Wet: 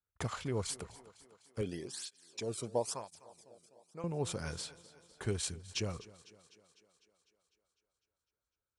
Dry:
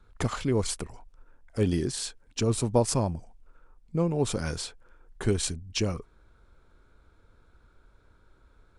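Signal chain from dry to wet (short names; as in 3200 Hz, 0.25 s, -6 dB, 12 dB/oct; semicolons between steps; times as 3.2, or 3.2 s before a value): gate -47 dBFS, range -24 dB; HPF 73 Hz; bell 270 Hz -6 dB 1.1 oct; thinning echo 0.251 s, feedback 64%, high-pass 150 Hz, level -18.5 dB; 1.61–4.04 tape flanging out of phase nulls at 1 Hz, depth 1.2 ms; gain -7 dB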